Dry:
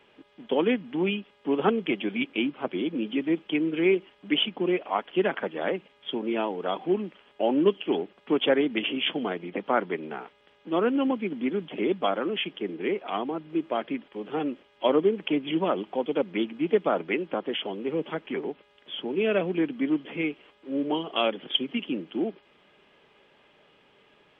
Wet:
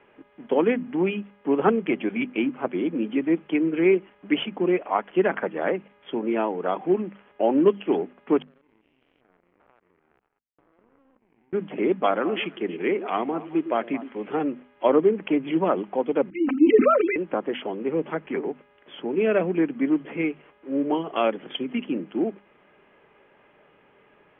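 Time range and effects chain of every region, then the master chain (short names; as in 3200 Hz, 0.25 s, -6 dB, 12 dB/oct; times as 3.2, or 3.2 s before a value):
8.42–11.53 stepped spectrum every 0.2 s + compressor, threshold -41 dBFS + power-law curve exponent 3
12.03–14.37 high shelf 3300 Hz +10.5 dB + delay with a stepping band-pass 0.108 s, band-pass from 330 Hz, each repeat 1.4 oct, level -11 dB
16.3–17.16 sine-wave speech + comb 3.9 ms, depth 76% + sustainer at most 31 dB/s
whole clip: LPF 2300 Hz 24 dB/oct; notches 50/100/150/200/250 Hz; gain +3.5 dB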